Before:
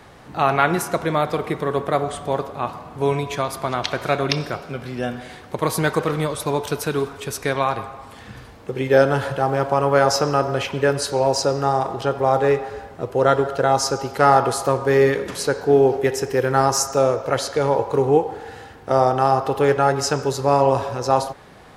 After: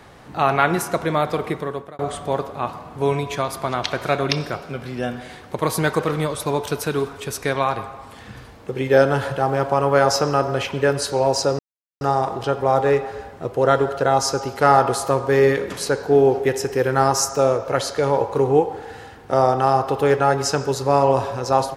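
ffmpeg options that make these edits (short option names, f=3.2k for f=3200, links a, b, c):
-filter_complex "[0:a]asplit=3[a][b][c];[a]atrim=end=1.99,asetpts=PTS-STARTPTS,afade=t=out:st=1.49:d=0.5[d];[b]atrim=start=1.99:end=11.59,asetpts=PTS-STARTPTS,afade=t=in:d=0.004:c=hsin,afade=t=out:st=9.596:d=0.004:c=hsin,apad=pad_dur=0.42[e];[c]atrim=start=11.59,asetpts=PTS-STARTPTS,afade=t=in:d=0.004:c=hsin[f];[d][e][f]concat=n=3:v=0:a=1"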